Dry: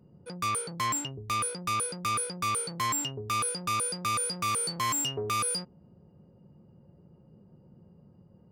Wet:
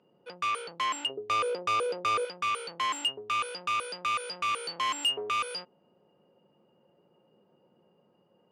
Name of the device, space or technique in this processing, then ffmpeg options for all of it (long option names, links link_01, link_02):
intercom: -filter_complex "[0:a]asettb=1/sr,asplit=3[link_01][link_02][link_03];[link_01]atrim=end=1.094[link_04];[link_02]atrim=start=1.09:end=2.25,asetpts=PTS-STARTPTS,afade=type=in:duration=0.004:curve=qsin,afade=type=out:start_time=1.156:duration=0.004:curve=qsin,equalizer=frequency=450:width_type=o:width=1.4:gain=13[link_05];[link_03]atrim=start=2.246[link_06];[link_04][link_05]acrossfade=duration=0.004:curve1=hsin:curve2=qsin[link_07];[link_07][link_06]acrossfade=duration=0.004:curve1=qsin:curve2=hsin,highpass=480,lowpass=3900,equalizer=frequency=2900:width_type=o:width=0.35:gain=10,asoftclip=type=tanh:threshold=-23.5dB,volume=2dB"